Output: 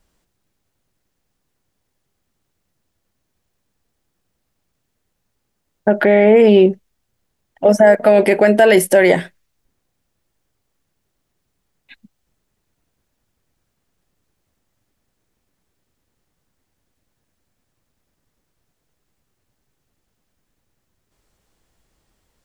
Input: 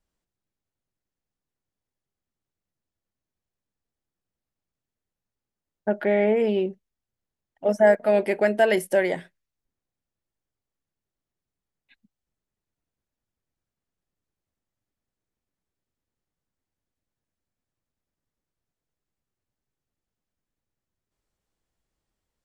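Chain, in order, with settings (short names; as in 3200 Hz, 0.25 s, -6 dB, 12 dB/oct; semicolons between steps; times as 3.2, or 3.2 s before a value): maximiser +17 dB; gain -1 dB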